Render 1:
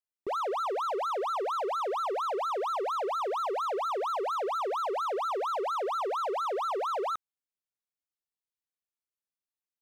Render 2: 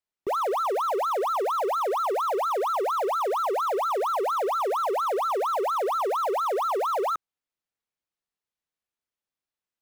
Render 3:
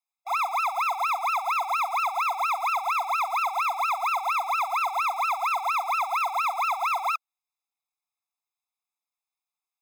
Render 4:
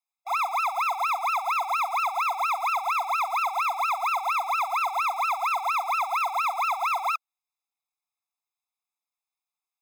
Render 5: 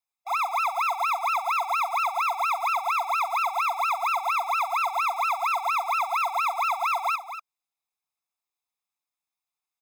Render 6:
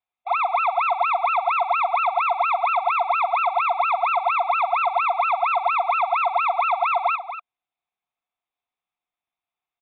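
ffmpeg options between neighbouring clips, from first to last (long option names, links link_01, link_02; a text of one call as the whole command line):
ffmpeg -i in.wav -filter_complex "[0:a]lowpass=frequency=3600:poles=1,acrossover=split=480|1500[link_01][link_02][link_03];[link_02]acrusher=bits=4:mode=log:mix=0:aa=0.000001[link_04];[link_01][link_04][link_03]amix=inputs=3:normalize=0,volume=5.5dB" out.wav
ffmpeg -i in.wav -af "aeval=exprs='max(val(0),0)':channel_layout=same,afftfilt=real='re*eq(mod(floor(b*sr/1024/680),2),1)':imag='im*eq(mod(floor(b*sr/1024/680),2),1)':win_size=1024:overlap=0.75,volume=7dB" out.wav
ffmpeg -i in.wav -af anull out.wav
ffmpeg -i in.wav -af "aecho=1:1:237:0.299" out.wav
ffmpeg -i in.wav -af "equalizer=frequency=710:width=6.7:gain=7.5,aresample=8000,aresample=44100,volume=3dB" out.wav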